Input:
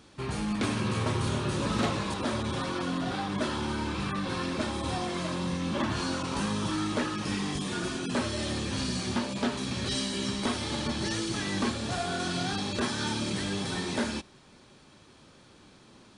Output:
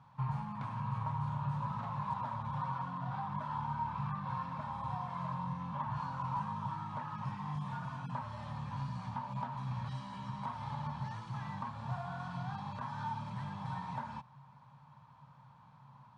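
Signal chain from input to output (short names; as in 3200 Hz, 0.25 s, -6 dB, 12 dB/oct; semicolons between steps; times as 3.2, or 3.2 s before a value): compressor, threshold -32 dBFS, peak gain reduction 9 dB; double band-pass 360 Hz, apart 2.8 oct; gain +8.5 dB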